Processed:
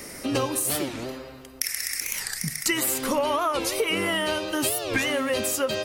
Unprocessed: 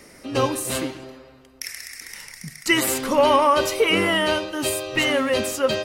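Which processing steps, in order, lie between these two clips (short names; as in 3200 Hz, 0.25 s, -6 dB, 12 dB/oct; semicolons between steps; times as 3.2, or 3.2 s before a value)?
high shelf 8200 Hz +10 dB; compressor 6:1, threshold -29 dBFS, peak gain reduction 15 dB; record warp 45 rpm, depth 250 cents; gain +6 dB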